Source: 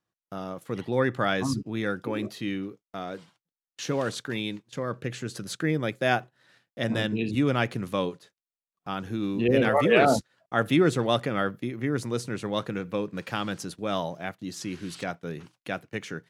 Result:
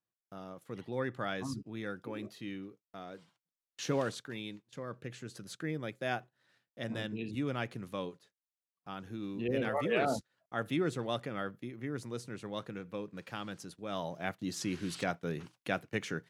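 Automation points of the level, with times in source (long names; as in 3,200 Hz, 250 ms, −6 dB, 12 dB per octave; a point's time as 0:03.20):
0:03.12 −11 dB
0:03.97 −3.5 dB
0:04.25 −11 dB
0:13.87 −11 dB
0:14.31 −1.5 dB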